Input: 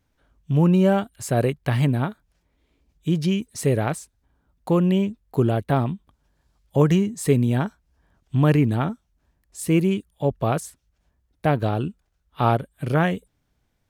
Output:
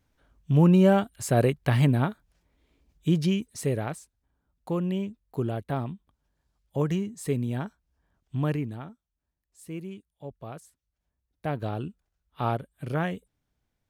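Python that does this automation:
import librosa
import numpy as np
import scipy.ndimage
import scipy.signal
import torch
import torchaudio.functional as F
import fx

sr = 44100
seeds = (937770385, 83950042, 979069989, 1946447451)

y = fx.gain(x, sr, db=fx.line((3.09, -1.0), (3.97, -9.0), (8.46, -9.0), (8.89, -18.0), (10.62, -18.0), (11.72, -8.0)))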